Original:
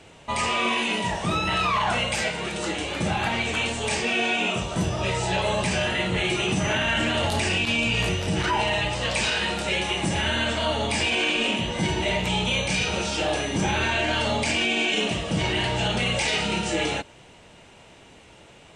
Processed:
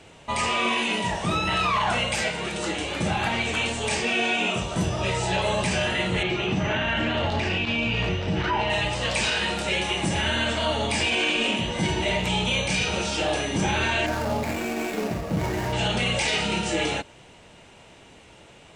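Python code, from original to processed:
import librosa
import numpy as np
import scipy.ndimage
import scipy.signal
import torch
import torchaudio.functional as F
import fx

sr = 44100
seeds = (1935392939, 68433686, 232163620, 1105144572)

y = fx.air_absorb(x, sr, metres=170.0, at=(6.23, 8.7))
y = fx.median_filter(y, sr, points=15, at=(14.06, 15.73))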